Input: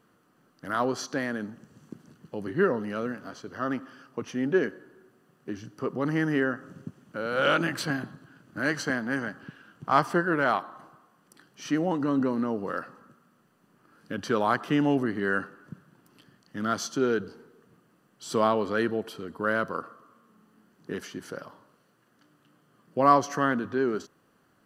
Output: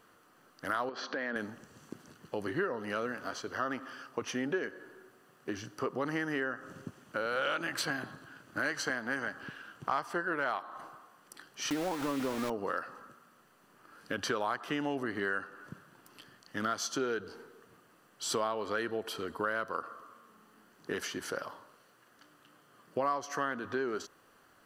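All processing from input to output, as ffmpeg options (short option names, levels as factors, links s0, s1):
-filter_complex "[0:a]asettb=1/sr,asplit=3[s0][s1][s2];[s0]atrim=end=0.894[s3];[s1]atrim=start=0.89:end=1.36,asetpts=PTS-STARTPTS,afade=t=in:d=0.004:c=qsin,afade=t=out:st=0.466:d=0.004:c=qsin,acompressor=threshold=0.0251:ratio=16:attack=3.2:release=140:knee=1:detection=peak,asoftclip=type=hard:threshold=0.0335,highpass=200,equalizer=f=220:t=q:w=4:g=9,equalizer=f=520:t=q:w=4:g=5,equalizer=f=1600:t=q:w=4:g=4,lowpass=f=4000:w=0.5412,lowpass=f=4000:w=1.3066[s4];[s2]atrim=start=1.356[s5];[s3][s4]acrossfade=d=0.004:c1=hsin:c2=qsin[s6];[s6][s5]acrossfade=d=0.004:c1=qsin:c2=hsin,asettb=1/sr,asplit=3[s7][s8][s9];[s7]atrim=end=11.704[s10];[s8]atrim=start=11.7:end=12.5,asetpts=PTS-STARTPTS,afade=t=in:d=0.004:c=qsin,afade=t=out:st=0.796:d=0.004:c=qsin,lowpass=1200,aeval=exprs='val(0)*gte(abs(val(0)),0.0237)':c=same[s11];[s9]atrim=start=12.496[s12];[s10][s11]acrossfade=d=0.004:c1=hsin:c2=qsin[s13];[s13][s12]acrossfade=d=0.004:c1=qsin:c2=hsin,equalizer=f=170:t=o:w=2.1:g=-11.5,acompressor=threshold=0.0158:ratio=5,volume=1.88"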